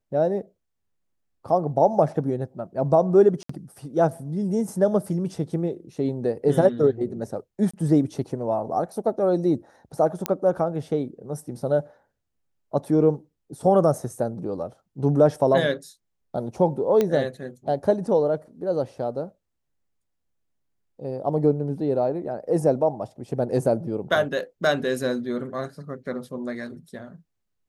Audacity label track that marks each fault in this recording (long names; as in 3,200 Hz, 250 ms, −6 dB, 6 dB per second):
3.430000	3.490000	drop-out 64 ms
7.710000	7.740000	drop-out 25 ms
10.260000	10.260000	click −7 dBFS
17.010000	17.010000	click −10 dBFS